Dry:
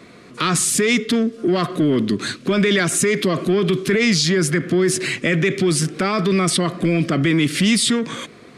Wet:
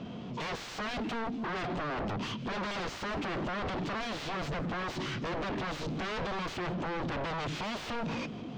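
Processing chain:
flat-topped bell 2,100 Hz −10.5 dB 1 octave
in parallel at +1 dB: brickwall limiter −14.5 dBFS, peak gain reduction 7.5 dB
on the sum: wave folding −18.5 dBFS
formants moved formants −5 semitones
soft clipping −30 dBFS, distortion −9 dB
high-frequency loss of the air 180 metres
delay with a high-pass on its return 163 ms, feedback 65%, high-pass 2,200 Hz, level −20.5 dB
level −2 dB

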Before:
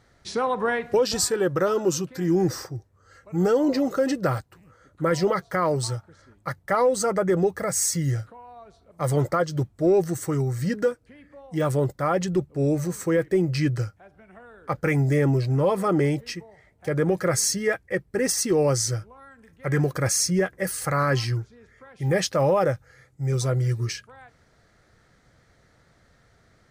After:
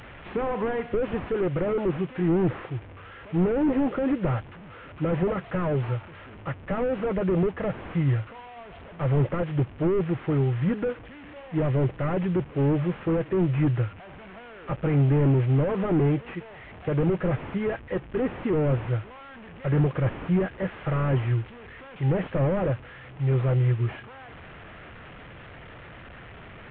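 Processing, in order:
linear delta modulator 16 kbit/s, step −39.5 dBFS
level +1.5 dB

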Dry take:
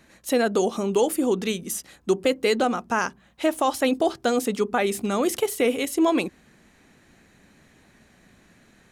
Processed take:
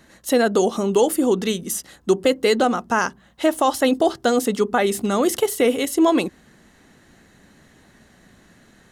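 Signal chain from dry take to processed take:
notch filter 2,400 Hz, Q 6.9
level +4 dB

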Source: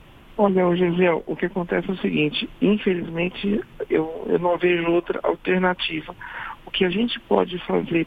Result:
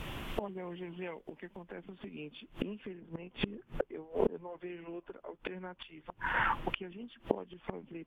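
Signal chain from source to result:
high-shelf EQ 2,100 Hz +4 dB, from 0:01.63 −3 dB, from 0:02.85 −9 dB
gate with flip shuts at −22 dBFS, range −29 dB
level +5 dB

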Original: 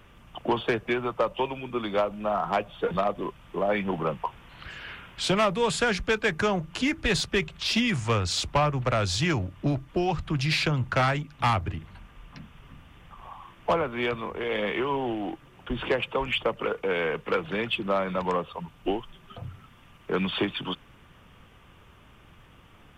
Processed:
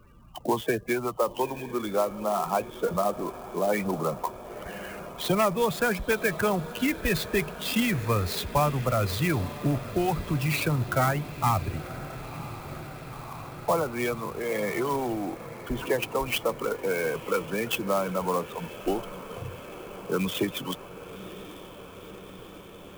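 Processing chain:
spectral peaks only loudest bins 32
feedback delay with all-pass diffusion 992 ms, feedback 75%, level −15 dB
converter with an unsteady clock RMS 0.031 ms

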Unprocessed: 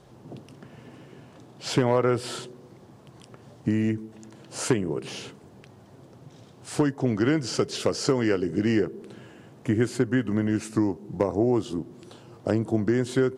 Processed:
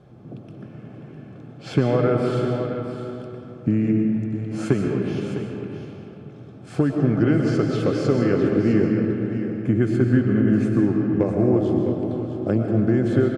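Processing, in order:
bass and treble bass +8 dB, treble −13 dB
notch comb filter 950 Hz
on a send: single-tap delay 657 ms −10.5 dB
on the sum: comb and all-pass reverb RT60 3 s, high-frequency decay 0.5×, pre-delay 80 ms, DRR 1 dB

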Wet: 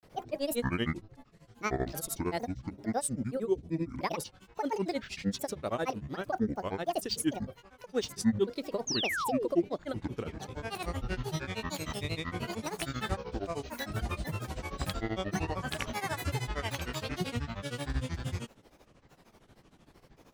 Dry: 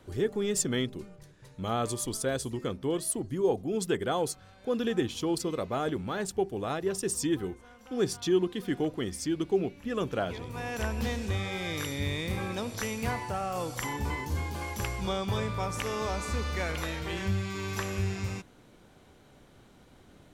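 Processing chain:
granular cloud, grains 13 per second, pitch spread up and down by 12 semitones
sound drawn into the spectrogram fall, 0:08.87–0:09.48, 320–6,800 Hz −33 dBFS

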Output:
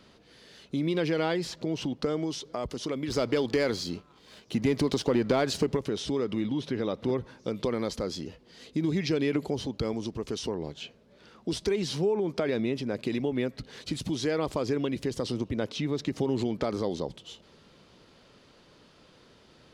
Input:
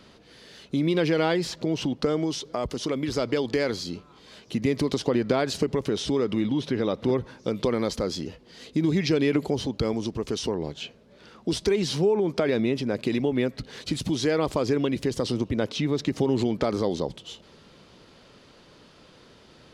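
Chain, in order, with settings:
0:03.10–0:05.77: leveller curve on the samples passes 1
level −4.5 dB

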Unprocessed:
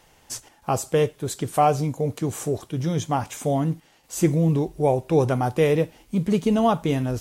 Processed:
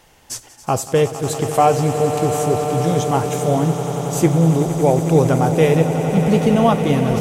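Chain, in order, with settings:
echo that builds up and dies away 92 ms, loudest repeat 8, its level −13.5 dB
level +4.5 dB

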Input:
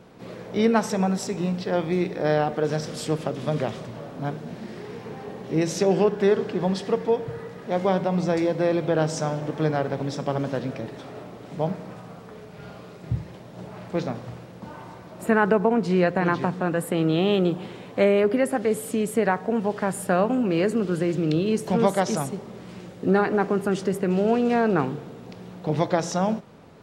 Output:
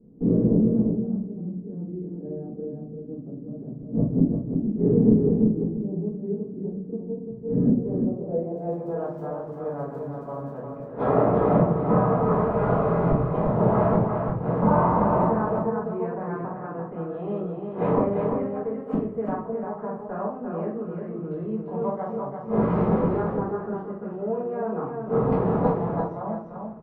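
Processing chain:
noise gate with hold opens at −36 dBFS
high-shelf EQ 2,600 Hz −7 dB
gate with flip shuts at −27 dBFS, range −28 dB
low-pass filter sweep 270 Hz → 1,100 Hz, 0:07.69–0:09.01
0:08.55–0:10.60: surface crackle 27 per second −66 dBFS
repeating echo 345 ms, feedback 16%, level −5 dB
rectangular room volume 36 cubic metres, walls mixed, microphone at 1.7 metres
level +6.5 dB

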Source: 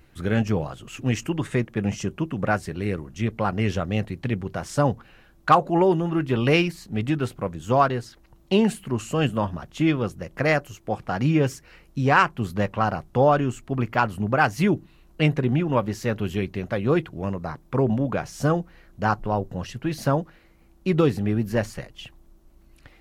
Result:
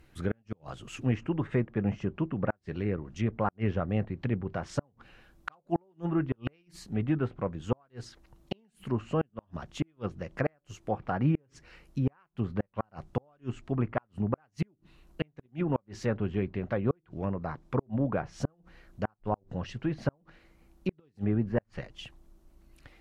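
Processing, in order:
gate with flip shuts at −12 dBFS, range −41 dB
treble cut that deepens with the level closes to 1,700 Hz, closed at −23.5 dBFS
level −4 dB

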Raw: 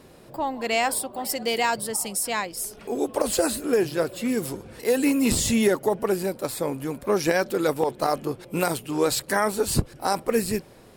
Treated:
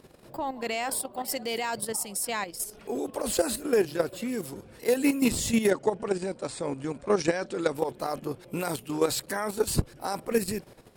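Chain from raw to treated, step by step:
0:05.70–0:07.75: Butterworth low-pass 9,300 Hz 72 dB per octave
output level in coarse steps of 10 dB

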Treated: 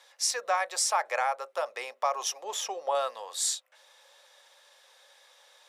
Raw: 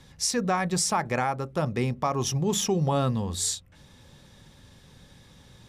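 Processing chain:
elliptic high-pass filter 550 Hz, stop band 80 dB
0:02.44–0:02.95: spectral tilt −2 dB per octave

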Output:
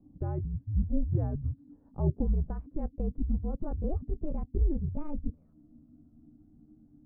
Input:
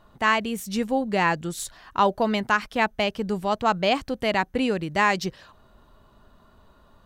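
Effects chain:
pitch glide at a constant tempo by +9.5 semitones starting unshifted
transistor ladder low-pass 560 Hz, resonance 25%
frequency shifter −310 Hz
level +5.5 dB

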